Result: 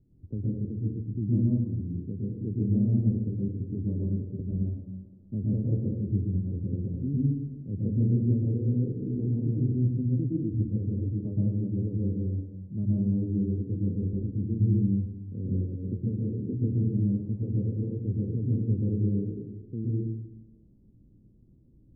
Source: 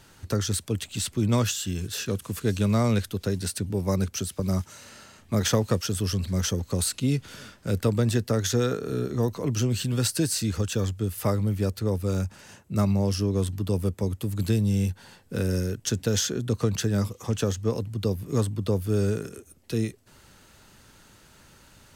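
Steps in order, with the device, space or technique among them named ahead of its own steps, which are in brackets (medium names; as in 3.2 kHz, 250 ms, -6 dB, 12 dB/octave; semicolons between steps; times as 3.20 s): next room (low-pass 330 Hz 24 dB/octave; reverberation RT60 1.0 s, pre-delay 108 ms, DRR -5 dB); trim -7 dB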